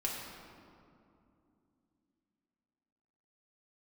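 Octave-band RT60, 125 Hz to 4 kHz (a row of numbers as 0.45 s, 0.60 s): 3.4 s, 4.0 s, 2.9 s, 2.5 s, 1.8 s, 1.3 s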